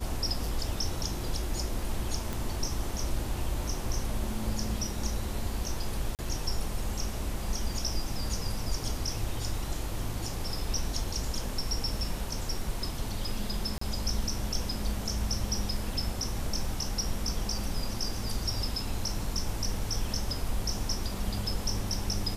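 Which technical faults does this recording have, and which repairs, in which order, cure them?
2.33 s: pop
6.15–6.19 s: dropout 38 ms
13.78–13.81 s: dropout 34 ms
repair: de-click; interpolate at 6.15 s, 38 ms; interpolate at 13.78 s, 34 ms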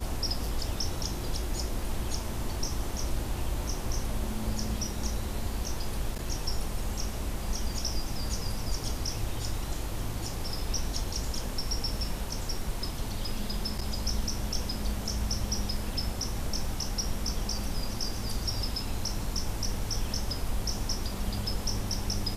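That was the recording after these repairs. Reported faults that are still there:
nothing left

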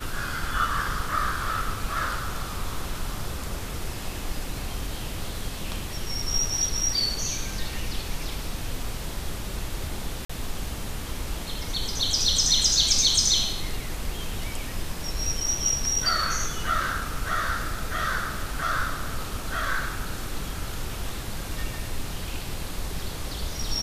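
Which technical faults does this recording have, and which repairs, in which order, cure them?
10.25–10.29 s: dropout 45 ms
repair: interpolate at 10.25 s, 45 ms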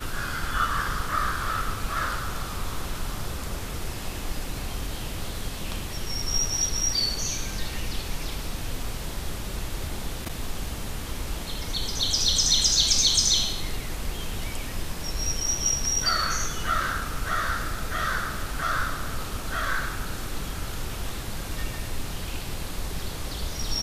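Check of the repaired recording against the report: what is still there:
nothing left

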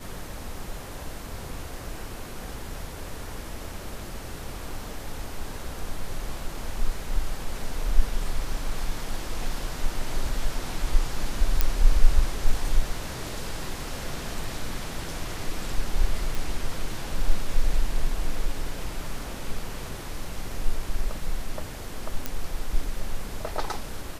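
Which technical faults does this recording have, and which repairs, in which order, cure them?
11.61 s: pop -5 dBFS
16.35 s: pop
22.26 s: pop -12 dBFS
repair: de-click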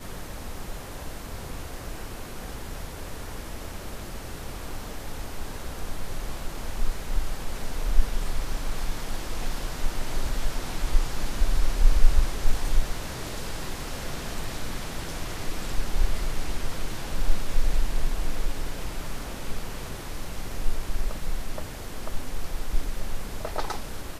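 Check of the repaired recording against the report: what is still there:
nothing left

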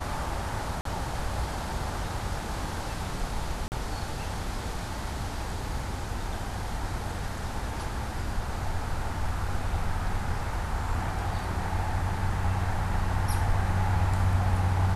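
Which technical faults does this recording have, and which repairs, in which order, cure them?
0.81–0.85 s: dropout 43 ms
3.68–3.72 s: dropout 39 ms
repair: interpolate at 0.81 s, 43 ms; interpolate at 3.68 s, 39 ms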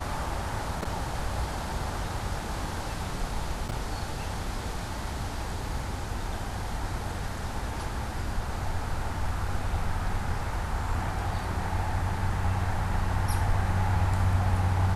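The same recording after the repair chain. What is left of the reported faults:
nothing left

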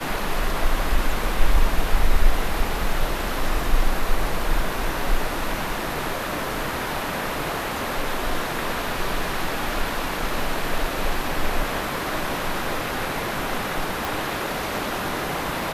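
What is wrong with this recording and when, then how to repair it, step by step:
14.05 s: pop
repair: de-click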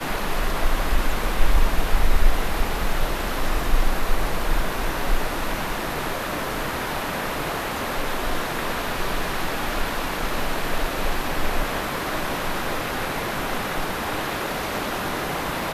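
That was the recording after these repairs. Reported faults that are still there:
nothing left

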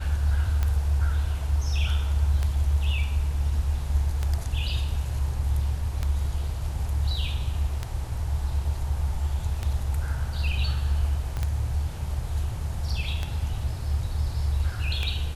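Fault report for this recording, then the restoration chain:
tick 33 1/3 rpm -14 dBFS
11.37 s: pop -19 dBFS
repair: de-click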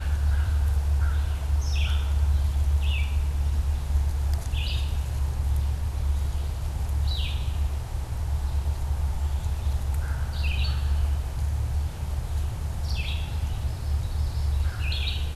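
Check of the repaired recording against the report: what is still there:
11.37 s: pop

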